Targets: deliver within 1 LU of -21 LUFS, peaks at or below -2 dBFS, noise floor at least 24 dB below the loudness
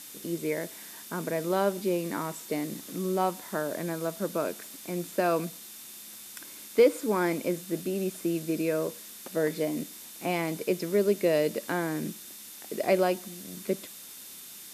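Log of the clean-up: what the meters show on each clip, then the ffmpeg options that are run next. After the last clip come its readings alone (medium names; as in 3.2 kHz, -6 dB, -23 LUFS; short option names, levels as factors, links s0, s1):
steady tone 3.6 kHz; tone level -58 dBFS; noise floor -46 dBFS; noise floor target -54 dBFS; loudness -30.0 LUFS; peak level -11.5 dBFS; loudness target -21.0 LUFS
-> -af "bandreject=f=3600:w=30"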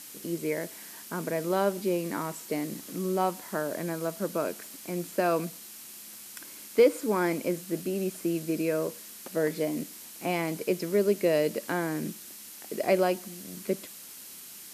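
steady tone not found; noise floor -46 dBFS; noise floor target -54 dBFS
-> -af "afftdn=nr=8:nf=-46"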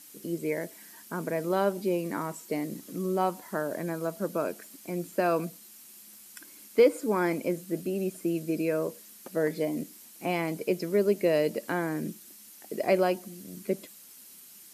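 noise floor -51 dBFS; noise floor target -54 dBFS
-> -af "afftdn=nr=6:nf=-51"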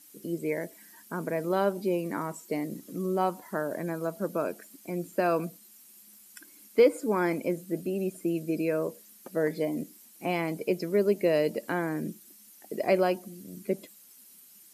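noise floor -55 dBFS; loudness -30.0 LUFS; peak level -11.5 dBFS; loudness target -21.0 LUFS
-> -af "volume=2.82"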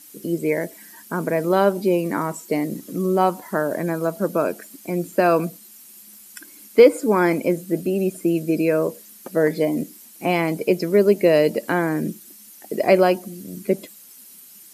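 loudness -21.0 LUFS; peak level -2.5 dBFS; noise floor -46 dBFS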